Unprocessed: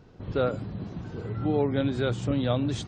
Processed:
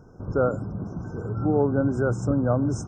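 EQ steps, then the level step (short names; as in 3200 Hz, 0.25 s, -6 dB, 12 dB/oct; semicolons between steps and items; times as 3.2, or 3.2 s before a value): brick-wall FIR band-stop 1600–5100 Hz; +3.5 dB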